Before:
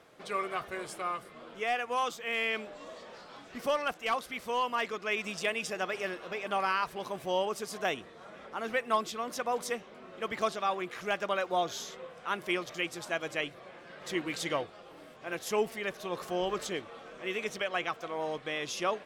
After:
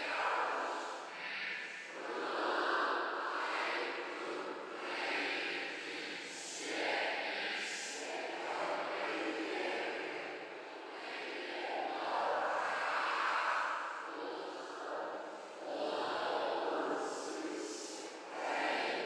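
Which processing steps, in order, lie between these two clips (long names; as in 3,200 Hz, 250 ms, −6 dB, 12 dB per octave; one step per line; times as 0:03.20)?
high-pass filter 360 Hz 24 dB per octave
in parallel at −8.5 dB: wave folding −30 dBFS
on the sum: multi-voice chorus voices 2, 0.25 Hz, delay 25 ms, depth 4.7 ms
cochlear-implant simulation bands 8
extreme stretch with random phases 4.9×, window 0.10 s, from 0:04.08
on a send at −2 dB: convolution reverb RT60 2.9 s, pre-delay 45 ms
on the sum: level −5 dB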